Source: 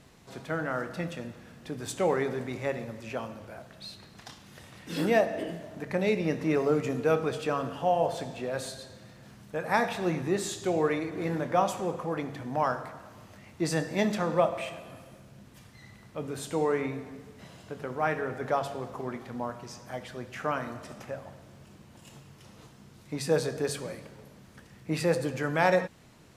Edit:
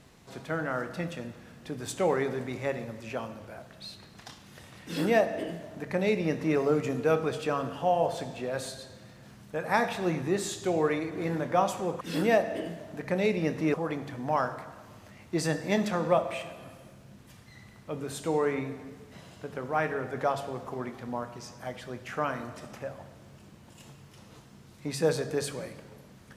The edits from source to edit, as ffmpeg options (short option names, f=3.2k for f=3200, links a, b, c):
-filter_complex "[0:a]asplit=3[a][b][c];[a]atrim=end=12.012[d];[b]atrim=start=4.838:end=6.572[e];[c]atrim=start=12.008[f];[d][e]acrossfade=d=0.004:c1=hsin:c2=hsin[g];[g][f]acrossfade=d=0.004:c1=hsin:c2=hsin"